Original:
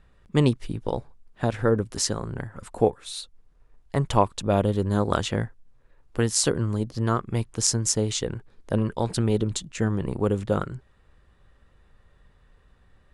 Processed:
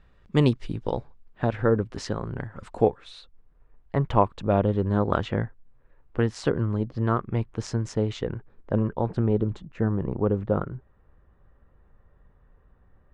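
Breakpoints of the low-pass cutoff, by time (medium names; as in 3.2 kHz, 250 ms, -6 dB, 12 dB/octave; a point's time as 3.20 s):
0.84 s 5.3 kHz
1.44 s 2.8 kHz
2.18 s 2.8 kHz
2.74 s 5 kHz
3.20 s 2.2 kHz
8.16 s 2.2 kHz
9.05 s 1.3 kHz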